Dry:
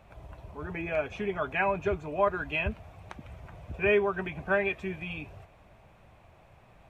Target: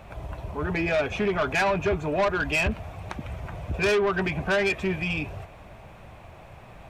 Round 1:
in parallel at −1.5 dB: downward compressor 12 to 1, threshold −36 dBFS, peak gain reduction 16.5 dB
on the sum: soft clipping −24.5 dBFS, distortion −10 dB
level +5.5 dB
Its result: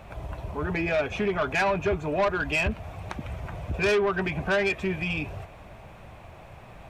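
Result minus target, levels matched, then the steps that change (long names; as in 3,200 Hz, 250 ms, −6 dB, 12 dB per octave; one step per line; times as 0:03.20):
downward compressor: peak gain reduction +8 dB
change: downward compressor 12 to 1, threshold −27 dBFS, peak gain reduction 8.5 dB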